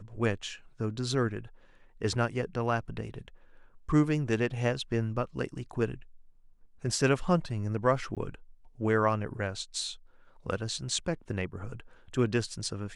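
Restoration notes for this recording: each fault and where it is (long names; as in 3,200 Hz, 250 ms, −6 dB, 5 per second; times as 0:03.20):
0:08.15–0:08.17: drop-out 17 ms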